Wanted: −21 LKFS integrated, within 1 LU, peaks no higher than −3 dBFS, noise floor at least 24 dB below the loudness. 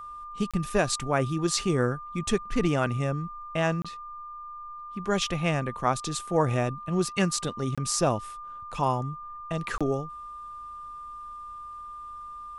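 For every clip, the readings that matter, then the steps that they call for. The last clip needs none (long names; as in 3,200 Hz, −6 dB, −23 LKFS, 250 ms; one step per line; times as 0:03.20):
number of dropouts 4; longest dropout 26 ms; interfering tone 1,200 Hz; level of the tone −38 dBFS; integrated loudness −28.0 LKFS; sample peak −9.0 dBFS; target loudness −21.0 LKFS
→ repair the gap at 0:00.51/0:03.82/0:07.75/0:09.78, 26 ms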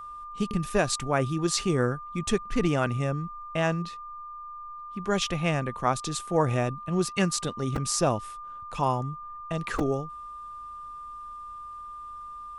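number of dropouts 0; interfering tone 1,200 Hz; level of the tone −38 dBFS
→ notch filter 1,200 Hz, Q 30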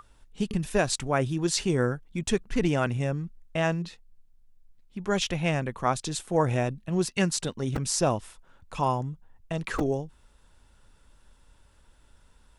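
interfering tone none found; integrated loudness −28.0 LKFS; sample peak −8.5 dBFS; target loudness −21.0 LKFS
→ level +7 dB
brickwall limiter −3 dBFS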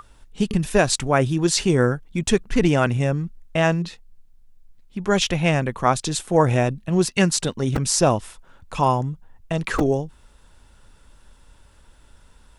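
integrated loudness −21.5 LKFS; sample peak −3.0 dBFS; background noise floor −53 dBFS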